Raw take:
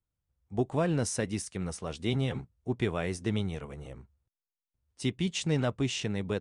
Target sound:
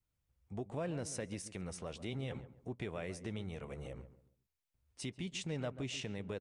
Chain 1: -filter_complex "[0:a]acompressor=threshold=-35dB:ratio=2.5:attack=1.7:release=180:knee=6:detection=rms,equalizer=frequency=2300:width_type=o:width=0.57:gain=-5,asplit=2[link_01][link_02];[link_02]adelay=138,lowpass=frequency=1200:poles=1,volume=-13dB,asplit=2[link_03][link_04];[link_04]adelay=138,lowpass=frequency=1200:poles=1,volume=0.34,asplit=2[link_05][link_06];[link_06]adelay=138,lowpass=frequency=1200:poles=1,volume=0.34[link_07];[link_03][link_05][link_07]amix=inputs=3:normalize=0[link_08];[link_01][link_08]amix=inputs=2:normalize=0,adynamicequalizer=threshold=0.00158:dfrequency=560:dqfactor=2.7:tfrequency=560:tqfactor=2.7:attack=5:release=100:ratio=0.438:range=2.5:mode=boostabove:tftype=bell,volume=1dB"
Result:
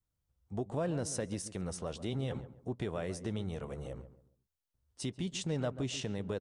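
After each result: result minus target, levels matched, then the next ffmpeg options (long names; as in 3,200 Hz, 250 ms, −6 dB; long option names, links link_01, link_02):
downward compressor: peak gain reduction −5 dB; 2,000 Hz band −4.5 dB
-filter_complex "[0:a]acompressor=threshold=-43.5dB:ratio=2.5:attack=1.7:release=180:knee=6:detection=rms,equalizer=frequency=2300:width_type=o:width=0.57:gain=-5,asplit=2[link_01][link_02];[link_02]adelay=138,lowpass=frequency=1200:poles=1,volume=-13dB,asplit=2[link_03][link_04];[link_04]adelay=138,lowpass=frequency=1200:poles=1,volume=0.34,asplit=2[link_05][link_06];[link_06]adelay=138,lowpass=frequency=1200:poles=1,volume=0.34[link_07];[link_03][link_05][link_07]amix=inputs=3:normalize=0[link_08];[link_01][link_08]amix=inputs=2:normalize=0,adynamicequalizer=threshold=0.00158:dfrequency=560:dqfactor=2.7:tfrequency=560:tqfactor=2.7:attack=5:release=100:ratio=0.438:range=2.5:mode=boostabove:tftype=bell,volume=1dB"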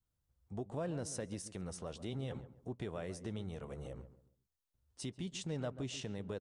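2,000 Hz band −4.5 dB
-filter_complex "[0:a]acompressor=threshold=-43.5dB:ratio=2.5:attack=1.7:release=180:knee=6:detection=rms,equalizer=frequency=2300:width_type=o:width=0.57:gain=3.5,asplit=2[link_01][link_02];[link_02]adelay=138,lowpass=frequency=1200:poles=1,volume=-13dB,asplit=2[link_03][link_04];[link_04]adelay=138,lowpass=frequency=1200:poles=1,volume=0.34,asplit=2[link_05][link_06];[link_06]adelay=138,lowpass=frequency=1200:poles=1,volume=0.34[link_07];[link_03][link_05][link_07]amix=inputs=3:normalize=0[link_08];[link_01][link_08]amix=inputs=2:normalize=0,adynamicequalizer=threshold=0.00158:dfrequency=560:dqfactor=2.7:tfrequency=560:tqfactor=2.7:attack=5:release=100:ratio=0.438:range=2.5:mode=boostabove:tftype=bell,volume=1dB"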